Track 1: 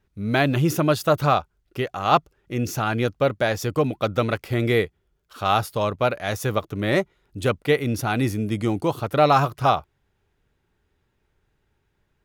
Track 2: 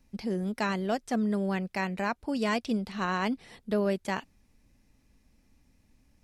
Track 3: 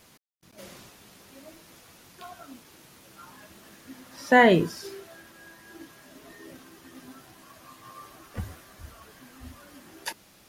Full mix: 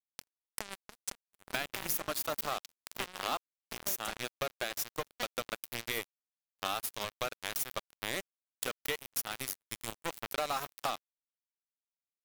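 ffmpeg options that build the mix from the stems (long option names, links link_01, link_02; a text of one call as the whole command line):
ffmpeg -i stem1.wav -i stem2.wav -i stem3.wav -filter_complex "[0:a]bandreject=frequency=60:width_type=h:width=6,bandreject=frequency=120:width_type=h:width=6,bandreject=frequency=180:width_type=h:width=6,bandreject=frequency=240:width_type=h:width=6,bandreject=frequency=300:width_type=h:width=6,bandreject=frequency=360:width_type=h:width=6,adelay=1200,volume=-6.5dB[link_01];[1:a]equalizer=frequency=860:width_type=o:width=0.73:gain=7.5,alimiter=limit=-20.5dB:level=0:latency=1:release=95,volume=3dB[link_02];[2:a]aeval=exprs='val(0)*pow(10,-37*(0.5-0.5*cos(2*PI*6.1*n/s))/20)':channel_layout=same,adelay=800,volume=-10.5dB[link_03];[link_02][link_03]amix=inputs=2:normalize=0,highpass=frequency=91:poles=1,acompressor=threshold=-31dB:ratio=12,volume=0dB[link_04];[link_01][link_04]amix=inputs=2:normalize=0,aemphasis=mode=production:type=riaa,acrusher=bits=3:mix=0:aa=0.5,acompressor=threshold=-31dB:ratio=6" out.wav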